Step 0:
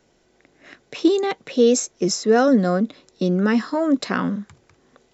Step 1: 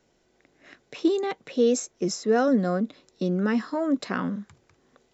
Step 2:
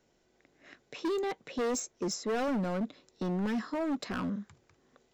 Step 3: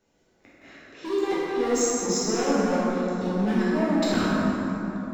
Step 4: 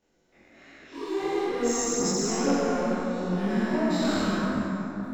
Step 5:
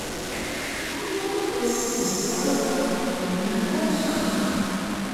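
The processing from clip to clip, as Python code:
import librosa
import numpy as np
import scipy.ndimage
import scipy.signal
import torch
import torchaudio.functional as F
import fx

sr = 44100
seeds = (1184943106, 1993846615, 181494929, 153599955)

y1 = fx.dynamic_eq(x, sr, hz=5100.0, q=0.73, threshold_db=-40.0, ratio=4.0, max_db=-3)
y1 = y1 * 10.0 ** (-5.5 / 20.0)
y2 = np.clip(10.0 ** (24.5 / 20.0) * y1, -1.0, 1.0) / 10.0 ** (24.5 / 20.0)
y2 = y2 * 10.0 ** (-4.0 / 20.0)
y3 = fx.level_steps(y2, sr, step_db=21)
y3 = fx.rev_plate(y3, sr, seeds[0], rt60_s=3.6, hf_ratio=0.45, predelay_ms=0, drr_db=-10.0)
y3 = y3 * 10.0 ** (9.0 / 20.0)
y4 = fx.spec_dilate(y3, sr, span_ms=240)
y4 = fx.chorus_voices(y4, sr, voices=2, hz=1.2, base_ms=24, depth_ms=3.0, mix_pct=60)
y4 = y4 * 10.0 ** (-5.0 / 20.0)
y5 = fx.delta_mod(y4, sr, bps=64000, step_db=-25.0)
y5 = y5 + 10.0 ** (-4.5 / 20.0) * np.pad(y5, (int(319 * sr / 1000.0), 0))[:len(y5)]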